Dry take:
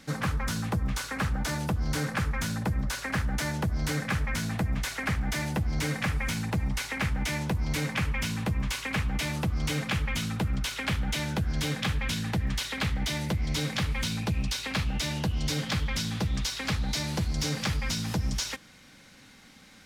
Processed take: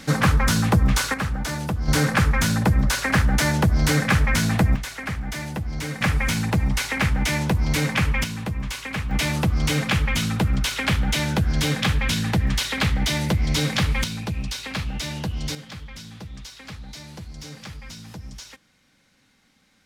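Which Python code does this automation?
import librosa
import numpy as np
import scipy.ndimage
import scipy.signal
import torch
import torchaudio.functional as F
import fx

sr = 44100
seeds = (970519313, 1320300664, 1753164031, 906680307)

y = fx.gain(x, sr, db=fx.steps((0.0, 11.0), (1.14, 3.0), (1.88, 10.0), (4.76, 0.0), (6.01, 7.5), (8.24, 1.0), (9.11, 7.5), (14.04, 1.0), (15.55, -9.0)))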